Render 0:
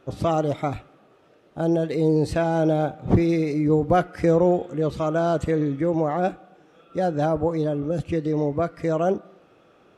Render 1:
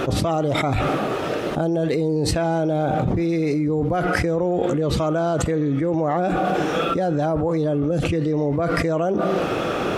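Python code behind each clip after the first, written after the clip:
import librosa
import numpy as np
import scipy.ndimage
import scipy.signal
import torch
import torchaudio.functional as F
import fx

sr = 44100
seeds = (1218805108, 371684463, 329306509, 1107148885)

y = fx.env_flatten(x, sr, amount_pct=100)
y = y * 10.0 ** (-7.5 / 20.0)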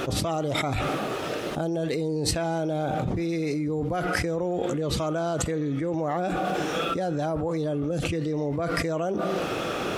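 y = fx.high_shelf(x, sr, hz=2800.0, db=8.0)
y = y * 10.0 ** (-6.5 / 20.0)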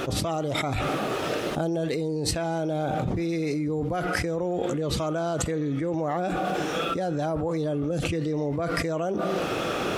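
y = fx.rider(x, sr, range_db=10, speed_s=0.5)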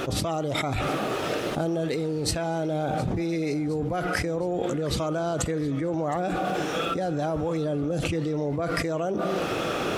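y = fx.echo_feedback(x, sr, ms=715, feedback_pct=56, wet_db=-19.5)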